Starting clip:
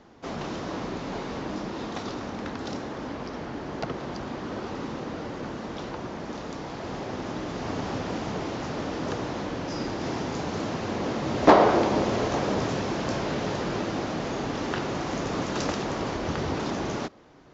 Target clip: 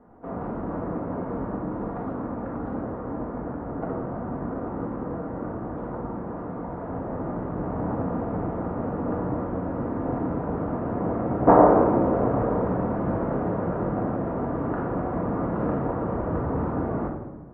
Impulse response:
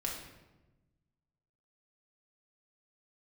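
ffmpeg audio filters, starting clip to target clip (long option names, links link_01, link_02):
-filter_complex "[0:a]lowpass=frequency=1300:width=0.5412,lowpass=frequency=1300:width=1.3066[link_01];[1:a]atrim=start_sample=2205[link_02];[link_01][link_02]afir=irnorm=-1:irlink=0"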